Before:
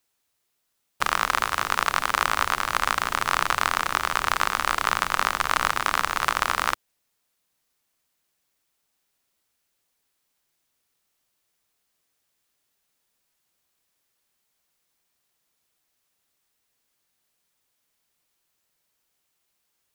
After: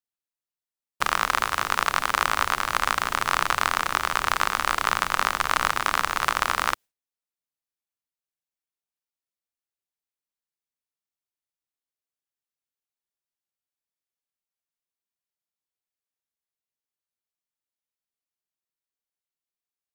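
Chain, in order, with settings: gate with hold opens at -35 dBFS

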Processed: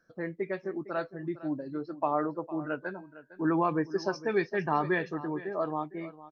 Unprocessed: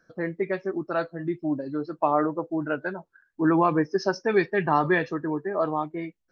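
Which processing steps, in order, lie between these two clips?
2.77–3.45 s: de-hum 316.5 Hz, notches 32; on a send: delay 457 ms -16.5 dB; on the sum: trim -6 dB

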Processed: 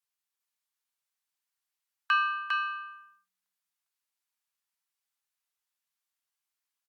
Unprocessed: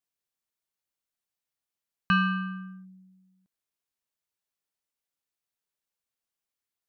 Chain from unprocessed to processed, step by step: high-pass 830 Hz 24 dB/octave; doubling 31 ms -13 dB; on a send: delay 403 ms -3.5 dB; on the sum: Opus 64 kbps 48 kHz

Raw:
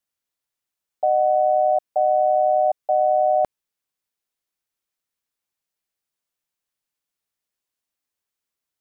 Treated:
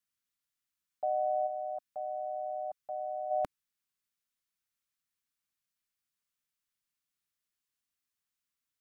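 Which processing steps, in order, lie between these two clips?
high-order bell 550 Hz -9 dB, from 1.46 s -15.5 dB, from 3.30 s -8.5 dB; trim -3.5 dB

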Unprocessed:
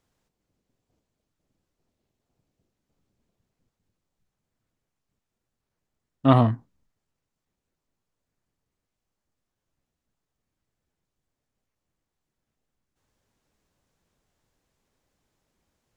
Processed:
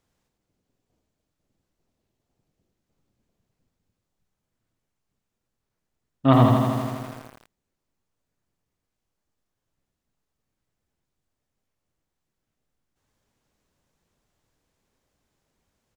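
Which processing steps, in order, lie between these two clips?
on a send: delay 96 ms -7 dB; on the sum: bit-crushed delay 82 ms, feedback 80%, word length 7-bit, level -4.5 dB

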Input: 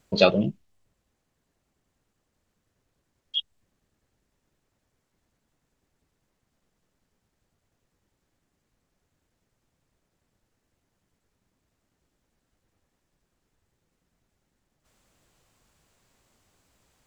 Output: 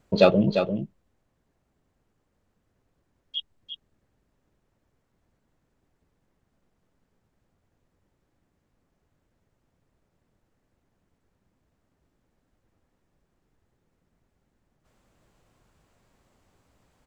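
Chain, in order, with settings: treble shelf 2.4 kHz -10.5 dB; in parallel at -7.5 dB: hard clipper -14.5 dBFS, distortion -12 dB; on the sum: delay 347 ms -7.5 dB

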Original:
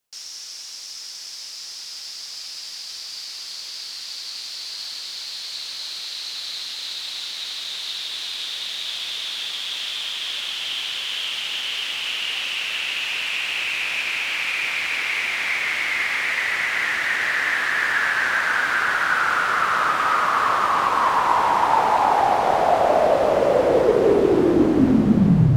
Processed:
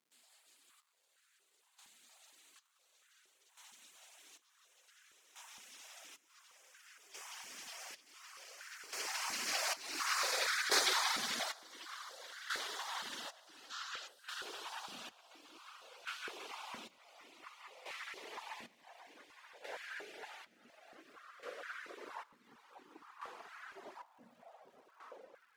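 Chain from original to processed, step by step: tape stop on the ending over 0.93 s; Doppler pass-by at 10.29 s, 25 m/s, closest 5.7 m; thinning echo 181 ms, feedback 58%, high-pass 890 Hz, level -4 dB; square tremolo 0.56 Hz, depth 65%, duty 45%; on a send at -12.5 dB: reverberation RT60 0.40 s, pre-delay 3 ms; on the sum: time-frequency box 13.70–14.08 s, 1.3–7.8 kHz +9 dB; reverb removal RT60 1.2 s; spectral gate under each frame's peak -15 dB weak; crackle 360 per s -78 dBFS; step-sequenced high-pass 4.3 Hz 230–1500 Hz; trim +11 dB

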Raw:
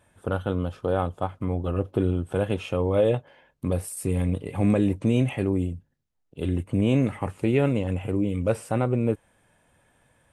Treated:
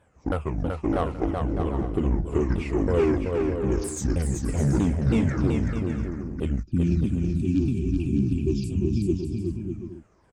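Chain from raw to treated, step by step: sawtooth pitch modulation -10.5 st, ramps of 320 ms; Chebyshev shaper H 5 -18 dB, 8 -22 dB, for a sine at -9 dBFS; time-frequency box 6.63–9.44 s, 400–2300 Hz -25 dB; bouncing-ball echo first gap 380 ms, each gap 0.6×, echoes 5; tape noise reduction on one side only decoder only; trim -2.5 dB

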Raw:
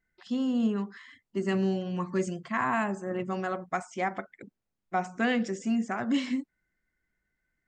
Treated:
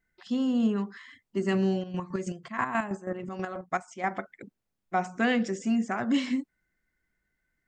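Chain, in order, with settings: 1.78–4.07 s: square tremolo 6.2 Hz, depth 60%, duty 35%; trim +1.5 dB

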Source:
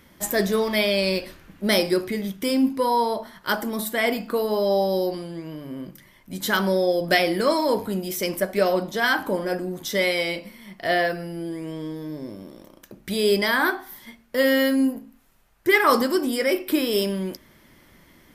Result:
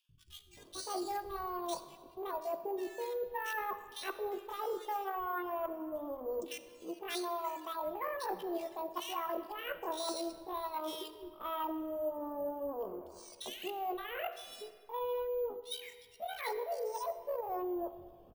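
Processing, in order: local Wiener filter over 41 samples; reverb removal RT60 1.1 s; dynamic bell 260 Hz, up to +4 dB, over -38 dBFS, Q 6.1; reverse; compression 20:1, threshold -35 dBFS, peak gain reduction 22.5 dB; reverse; pitch shift +10.5 st; three bands offset in time highs, lows, mids 90/570 ms, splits 150/2700 Hz; on a send at -11.5 dB: reverberation RT60 1.9 s, pre-delay 10 ms; on the sum: careless resampling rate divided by 3×, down filtered, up hold; trim +1 dB

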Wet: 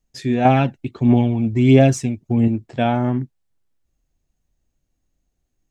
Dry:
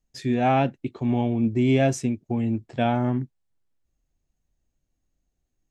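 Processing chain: 0.45–2.48 s: phaser 1.5 Hz, delay 1.5 ms, feedback 50%; trim +4 dB

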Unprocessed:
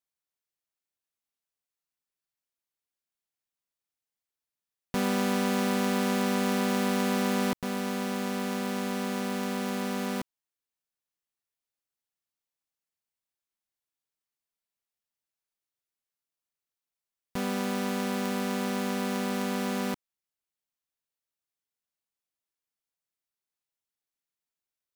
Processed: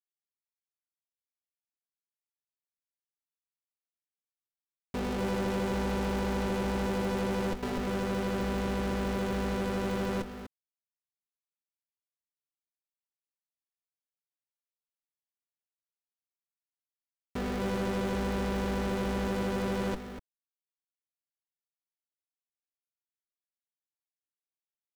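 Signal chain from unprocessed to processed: octave divider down 2 oct, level -4 dB; in parallel at -0.5 dB: companded quantiser 2-bit; on the sum: treble shelf 2.8 kHz -11.5 dB; saturation -32.5 dBFS, distortion -10 dB; on a send: delay 245 ms -6 dB; on the sum: crossover distortion -45 dBFS; level rider gain up to 3.5 dB

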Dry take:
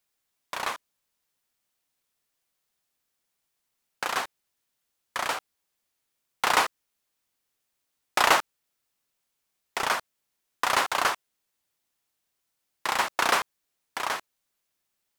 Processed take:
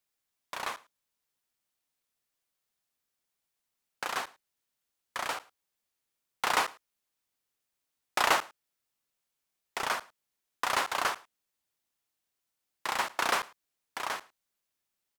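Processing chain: delay 107 ms -23 dB; trim -5 dB

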